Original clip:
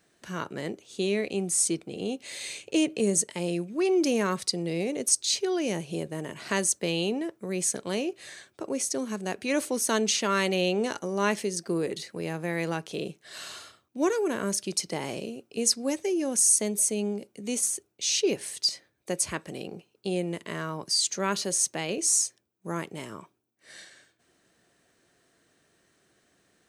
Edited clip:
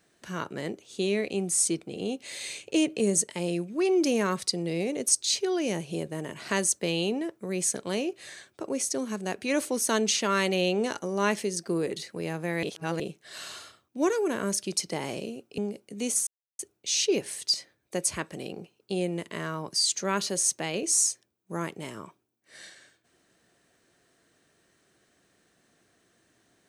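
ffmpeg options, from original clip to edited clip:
ffmpeg -i in.wav -filter_complex "[0:a]asplit=5[link_01][link_02][link_03][link_04][link_05];[link_01]atrim=end=12.632[link_06];[link_02]atrim=start=12.628:end=13.002,asetpts=PTS-STARTPTS,areverse[link_07];[link_03]atrim=start=12.998:end=15.582[link_08];[link_04]atrim=start=17.048:end=17.74,asetpts=PTS-STARTPTS,afade=type=out:start_time=0.688:duration=0.004:curve=hsin,apad=pad_dur=0.32[link_09];[link_05]atrim=start=17.74,asetpts=PTS-STARTPTS,afade=type=in:duration=0.004:curve=hsin[link_10];[link_06][link_07]acrossfade=duration=0.004:curve1=hsin:curve2=hsin[link_11];[link_11][link_08]acrossfade=duration=0.004:curve1=hsin:curve2=hsin[link_12];[link_09][link_10]concat=n=2:v=0:a=1[link_13];[link_12][link_13]acrossfade=duration=0.004:curve1=hsin:curve2=hsin" out.wav

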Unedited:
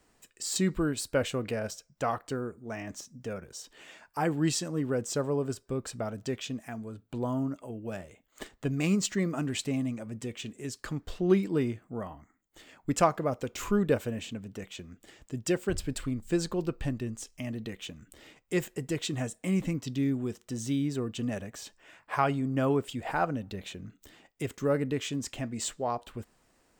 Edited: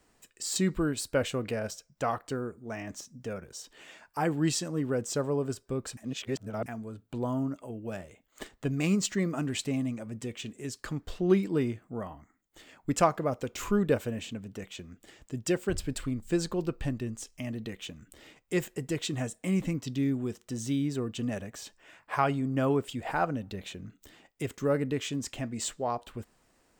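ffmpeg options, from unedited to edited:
ffmpeg -i in.wav -filter_complex "[0:a]asplit=3[link_01][link_02][link_03];[link_01]atrim=end=5.972[link_04];[link_02]atrim=start=5.968:end=6.662,asetpts=PTS-STARTPTS,areverse[link_05];[link_03]atrim=start=6.658[link_06];[link_04][link_05]acrossfade=duration=0.004:curve1=hsin:curve2=hsin[link_07];[link_07][link_06]acrossfade=duration=0.004:curve1=hsin:curve2=hsin" out.wav

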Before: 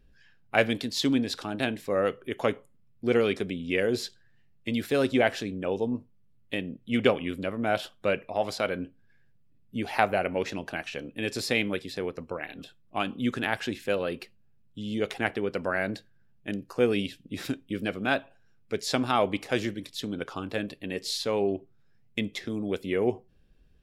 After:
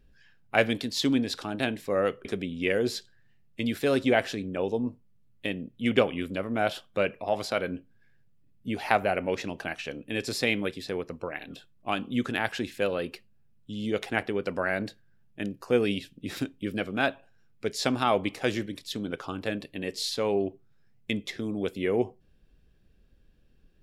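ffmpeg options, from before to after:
ffmpeg -i in.wav -filter_complex "[0:a]asplit=2[link_01][link_02];[link_01]atrim=end=2.252[link_03];[link_02]atrim=start=3.328[link_04];[link_03][link_04]acrossfade=duration=0.004:curve1=hsin:curve2=hsin" out.wav

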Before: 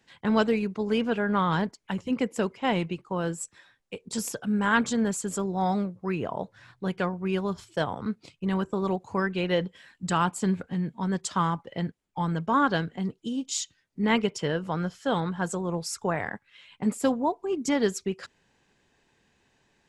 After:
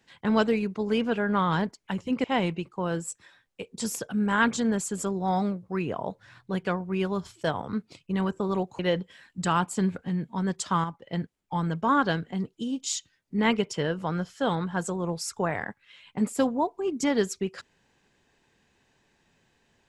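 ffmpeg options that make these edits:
ffmpeg -i in.wav -filter_complex "[0:a]asplit=5[link_01][link_02][link_03][link_04][link_05];[link_01]atrim=end=2.242[link_06];[link_02]atrim=start=2.568:end=9.122[link_07];[link_03]atrim=start=9.438:end=11.492[link_08];[link_04]atrim=start=11.488:end=11.782,asetpts=PTS-STARTPTS,volume=-5.5dB[link_09];[link_05]atrim=start=11.778[link_10];[link_06][link_07]acrossfade=duration=0.004:curve1=hsin:curve2=hsin[link_11];[link_11][link_08]acrossfade=duration=0.004:curve1=hsin:curve2=hsin[link_12];[link_12][link_09]acrossfade=duration=0.004:curve1=hsin:curve2=hsin[link_13];[link_13][link_10]acrossfade=duration=0.004:curve1=hsin:curve2=hsin" out.wav

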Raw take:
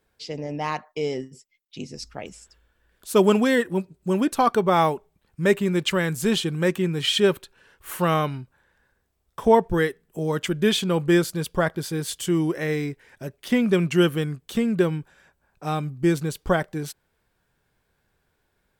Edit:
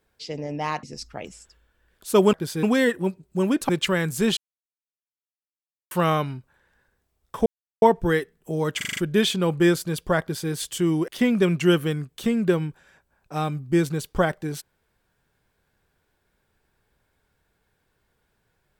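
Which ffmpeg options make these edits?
ffmpeg -i in.wav -filter_complex "[0:a]asplit=14[link_01][link_02][link_03][link_04][link_05][link_06][link_07][link_08][link_09][link_10][link_11][link_12][link_13][link_14];[link_01]atrim=end=0.832[link_15];[link_02]atrim=start=1.838:end=3.342[link_16];[link_03]atrim=start=11.688:end=11.992[link_17];[link_04]atrim=start=3.338:end=4.402[link_18];[link_05]atrim=start=5.728:end=6.41,asetpts=PTS-STARTPTS,afade=type=out:start_time=0.678:duration=0.004:curve=hsin[link_19];[link_06]atrim=start=6.41:end=7.95,asetpts=PTS-STARTPTS,volume=0[link_20];[link_07]atrim=start=7.95:end=9.5,asetpts=PTS-STARTPTS,afade=type=in:duration=0.004:curve=hsin,afade=type=out:start_time=1.546:duration=0.004:curve=hsin,apad=pad_dur=0.36[link_21];[link_08]atrim=start=9.5:end=10.492,asetpts=PTS-STARTPTS,afade=type=in:duration=0.004:curve=hsin[link_22];[link_09]atrim=start=10.448:end=10.492[link_23];[link_10]atrim=start=10.448:end=10.492[link_24];[link_11]atrim=start=10.448:end=10.492[link_25];[link_12]atrim=start=10.448:end=10.492[link_26];[link_13]atrim=start=10.448:end=12.562[link_27];[link_14]atrim=start=13.388[link_28];[link_15][link_16]acrossfade=duration=0.004:curve1=hsin:curve2=hsin[link_29];[link_29][link_17]acrossfade=duration=0.004:curve1=hsin:curve2=hsin[link_30];[link_30][link_18]acrossfade=duration=0.004:curve1=hsin:curve2=hsin[link_31];[link_19][link_20][link_21][link_22]concat=n=4:v=0:a=1[link_32];[link_31][link_32]acrossfade=duration=0.004:curve1=hsin:curve2=hsin[link_33];[link_33][link_23]acrossfade=duration=0.004:curve1=hsin:curve2=hsin[link_34];[link_34][link_24]acrossfade=duration=0.004:curve1=hsin:curve2=hsin[link_35];[link_35][link_25]acrossfade=duration=0.004:curve1=hsin:curve2=hsin[link_36];[link_36][link_26]acrossfade=duration=0.004:curve1=hsin:curve2=hsin[link_37];[link_37][link_27]acrossfade=duration=0.004:curve1=hsin:curve2=hsin[link_38];[link_38][link_28]acrossfade=duration=0.004:curve1=hsin:curve2=hsin" out.wav

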